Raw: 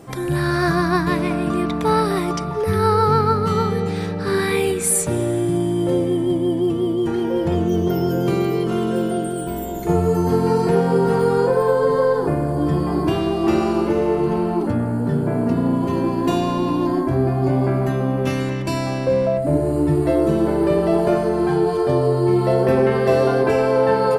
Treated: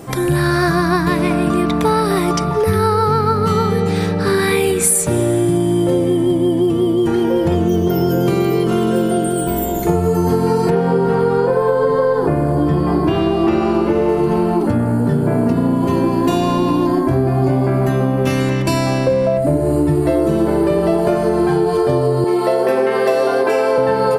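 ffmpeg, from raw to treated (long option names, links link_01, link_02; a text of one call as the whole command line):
ffmpeg -i in.wav -filter_complex "[0:a]asettb=1/sr,asplit=3[link_01][link_02][link_03];[link_01]atrim=end=10.704[link_04];[link_02]atrim=start=10.7:end=14.09,asetpts=PTS-STARTPTS,afade=type=in:duration=0.004:curve=qsin,afade=type=out:start_time=3.386:duration=0.004:curve=qsin,acrossover=split=4000[link_05][link_06];[link_06]acompressor=threshold=-55dB:ratio=4:attack=1:release=60[link_07];[link_05][link_07]amix=inputs=2:normalize=0[link_08];[link_03]atrim=start=14.086[link_09];[link_04][link_08]acrossfade=duration=0.004:curve1=hsin:curve2=qsin[link_10];[link_10][link_09]acrossfade=duration=0.004:curve1=qsin:curve2=hsin,asettb=1/sr,asplit=3[link_11][link_12][link_13];[link_11]atrim=end=22.244[link_14];[link_12]atrim=start=22.24:end=23.78,asetpts=PTS-STARTPTS,afade=type=in:duration=0.004:curve=qsin,afade=type=out:start_time=1.536:duration=0.004:curve=qsin,highpass=370[link_15];[link_13]atrim=start=23.776[link_16];[link_14][link_15]acrossfade=duration=0.004:curve1=hsin:curve2=qsin[link_17];[link_17][link_16]acrossfade=duration=0.004:curve1=qsin:curve2=hsin,highshelf=frequency=10000:gain=6,acompressor=threshold=-19dB:ratio=6,volume=7.5dB" out.wav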